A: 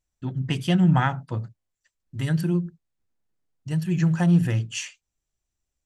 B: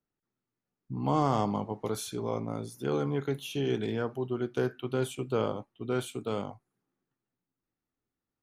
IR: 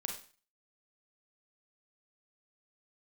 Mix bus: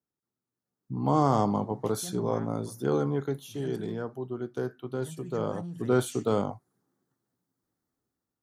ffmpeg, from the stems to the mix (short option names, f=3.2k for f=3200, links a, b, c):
-filter_complex "[0:a]lowshelf=f=220:g=-8,alimiter=limit=-18dB:level=0:latency=1:release=92,adelay=1350,volume=-14dB[a];[1:a]dynaudnorm=f=320:g=5:m=7dB,volume=6.5dB,afade=t=out:st=2.88:d=0.69:silence=0.473151,afade=t=in:st=5.37:d=0.57:silence=0.334965[b];[a][b]amix=inputs=2:normalize=0,highpass=61,equalizer=f=2.6k:w=2:g=-12.5"